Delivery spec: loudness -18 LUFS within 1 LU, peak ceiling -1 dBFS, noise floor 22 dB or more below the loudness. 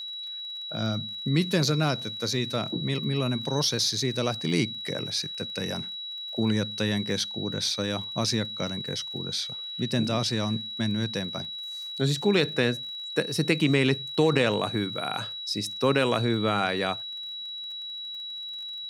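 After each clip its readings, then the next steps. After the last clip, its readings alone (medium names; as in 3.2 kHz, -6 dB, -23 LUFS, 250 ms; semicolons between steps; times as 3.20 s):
tick rate 37 per s; steady tone 3.9 kHz; tone level -34 dBFS; loudness -27.5 LUFS; peak level -9.5 dBFS; loudness target -18.0 LUFS
-> de-click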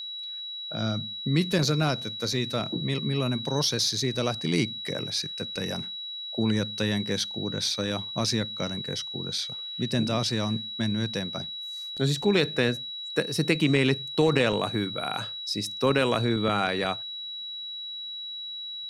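tick rate 0.16 per s; steady tone 3.9 kHz; tone level -34 dBFS
-> band-stop 3.9 kHz, Q 30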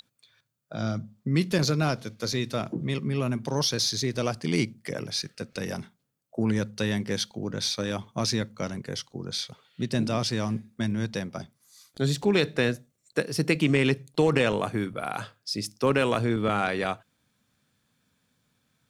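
steady tone not found; loudness -28.0 LUFS; peak level -10.0 dBFS; loudness target -18.0 LUFS
-> trim +10 dB; peak limiter -1 dBFS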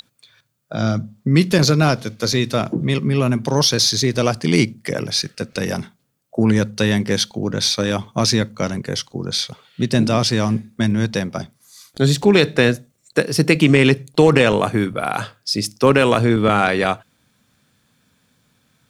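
loudness -18.0 LUFS; peak level -1.0 dBFS; noise floor -65 dBFS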